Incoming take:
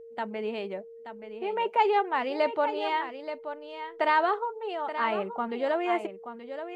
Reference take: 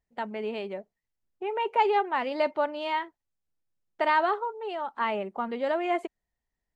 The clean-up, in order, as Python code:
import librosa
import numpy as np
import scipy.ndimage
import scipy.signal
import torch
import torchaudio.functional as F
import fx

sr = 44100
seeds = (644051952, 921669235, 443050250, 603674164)

y = fx.notch(x, sr, hz=460.0, q=30.0)
y = fx.fix_echo_inverse(y, sr, delay_ms=878, level_db=-10.0)